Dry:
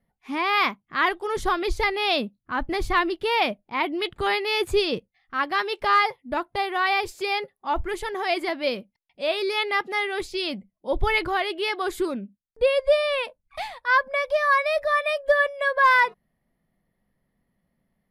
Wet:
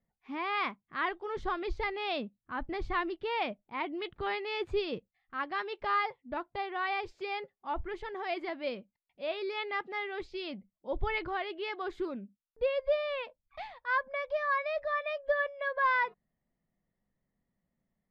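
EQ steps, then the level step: air absorption 200 m; -9.0 dB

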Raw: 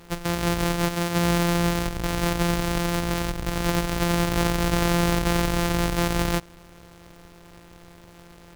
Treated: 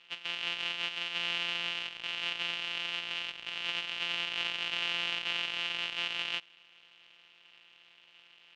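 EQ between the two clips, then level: band-pass 2900 Hz, Q 6.3; air absorption 71 m; +7.5 dB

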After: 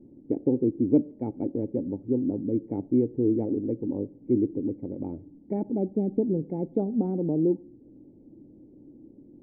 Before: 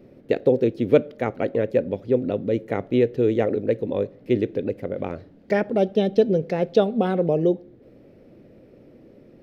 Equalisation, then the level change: vocal tract filter u; low shelf 230 Hz +12 dB; high shelf 2400 Hz +12 dB; 0.0 dB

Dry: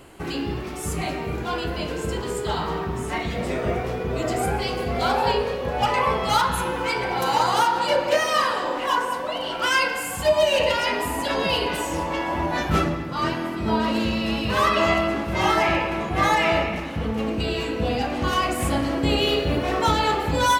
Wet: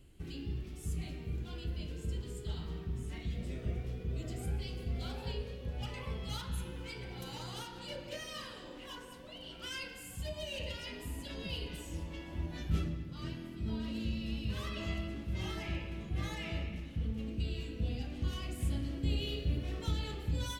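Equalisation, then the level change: passive tone stack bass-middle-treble 10-0-1; bell 3200 Hz +4 dB 0.62 oct; +3.0 dB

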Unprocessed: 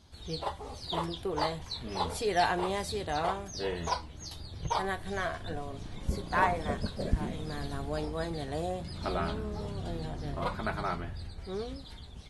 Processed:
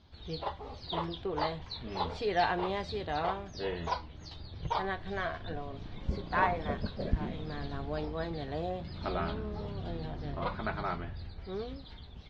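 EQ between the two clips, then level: LPF 4400 Hz 24 dB/oct; -1.5 dB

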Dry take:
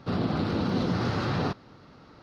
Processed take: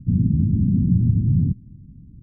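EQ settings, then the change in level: inverse Chebyshev low-pass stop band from 590 Hz, stop band 50 dB; tilt -3.5 dB/oct; +2.5 dB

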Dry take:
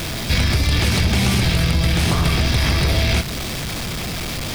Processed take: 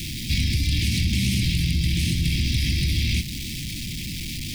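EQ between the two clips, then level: inverse Chebyshev band-stop 480–1400 Hz, stop band 40 dB; -4.5 dB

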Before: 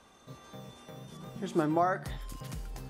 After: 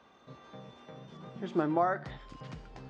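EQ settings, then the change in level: Gaussian blur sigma 1.9 samples; HPF 150 Hz 6 dB/oct; 0.0 dB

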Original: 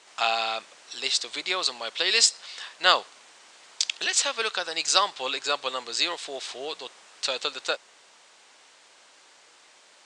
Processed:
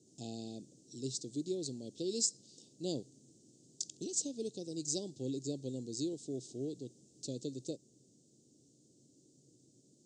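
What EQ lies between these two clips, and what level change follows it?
elliptic band-stop 300–6900 Hz, stop band 80 dB; tape spacing loss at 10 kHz 25 dB; bell 130 Hz +13.5 dB 0.48 oct; +9.0 dB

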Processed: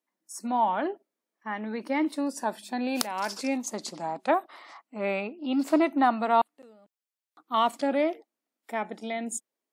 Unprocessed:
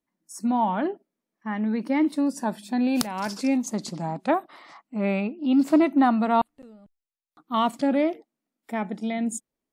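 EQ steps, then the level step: HPF 380 Hz 12 dB/oct; 0.0 dB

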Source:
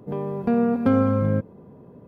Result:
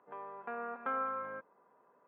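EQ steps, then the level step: ladder band-pass 1600 Hz, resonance 30%; air absorption 480 m; +8.0 dB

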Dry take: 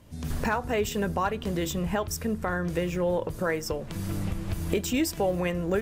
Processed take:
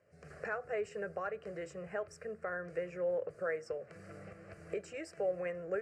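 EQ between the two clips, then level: speaker cabinet 280–7600 Hz, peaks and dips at 330 Hz -6 dB, 780 Hz -4 dB, 6300 Hz -7 dB; high shelf 2400 Hz -10.5 dB; fixed phaser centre 950 Hz, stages 6; -4.5 dB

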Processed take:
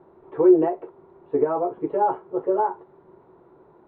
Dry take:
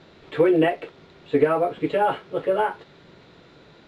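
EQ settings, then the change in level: synth low-pass 950 Hz, resonance Q 3.5; bell 370 Hz +13.5 dB 0.31 oct; -8.5 dB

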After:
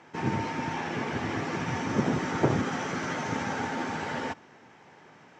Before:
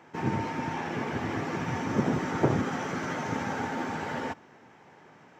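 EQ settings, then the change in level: air absorption 61 m; high shelf 3100 Hz +9 dB; 0.0 dB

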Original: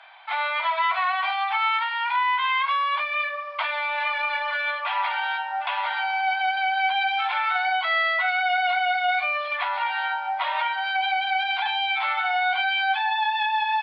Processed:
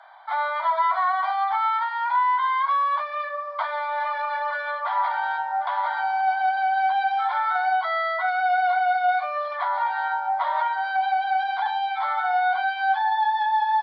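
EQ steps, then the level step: resonant high-pass 540 Hz, resonance Q 4.3; fixed phaser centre 1100 Hz, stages 4; 0.0 dB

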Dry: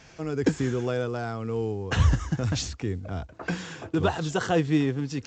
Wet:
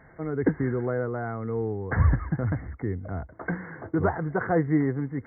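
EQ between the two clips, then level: brick-wall FIR low-pass 2200 Hz; 0.0 dB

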